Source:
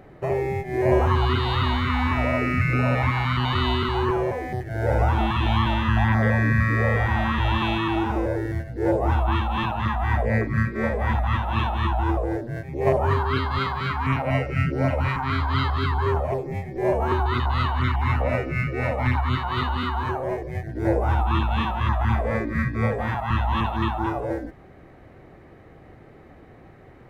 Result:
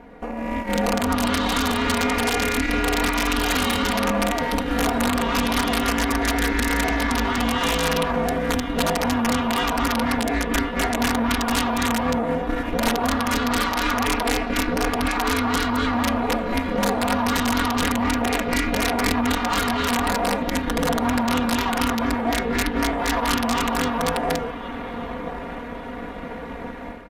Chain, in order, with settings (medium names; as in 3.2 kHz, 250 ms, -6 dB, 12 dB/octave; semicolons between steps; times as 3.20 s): compression 6:1, threshold -34 dBFS, peak gain reduction 18 dB; ring modulator 170 Hz; on a send: echo that smears into a reverb 1120 ms, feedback 56%, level -11.5 dB; on the sum: level rider gain up to 11 dB; Chebyshev shaper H 2 -25 dB, 3 -30 dB, 6 -38 dB, 8 -21 dB, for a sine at -13 dBFS; integer overflow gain 18 dB; bass shelf 490 Hz -3.5 dB; comb 4.2 ms, depth 99%; trim +5 dB; AAC 96 kbps 32 kHz